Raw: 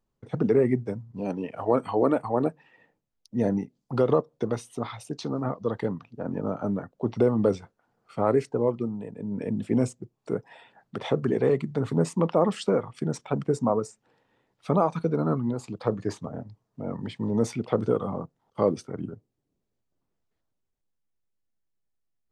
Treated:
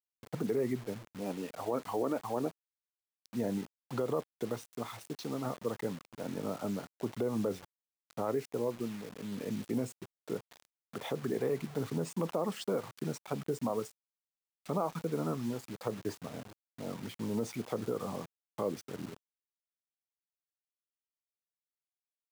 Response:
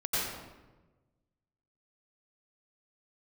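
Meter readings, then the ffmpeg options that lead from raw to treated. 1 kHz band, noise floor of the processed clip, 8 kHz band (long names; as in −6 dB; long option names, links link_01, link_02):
−9.0 dB, below −85 dBFS, −3.5 dB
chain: -af "acrusher=bits=6:mix=0:aa=0.000001,alimiter=limit=-15.5dB:level=0:latency=1:release=91,lowshelf=frequency=100:gain=-8.5,volume=-6.5dB"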